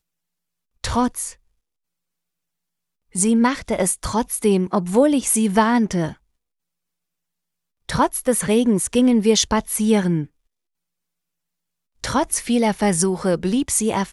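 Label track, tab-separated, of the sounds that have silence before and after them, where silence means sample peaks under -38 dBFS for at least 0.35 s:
0.840000	1.330000	sound
3.150000	6.130000	sound
7.890000	10.260000	sound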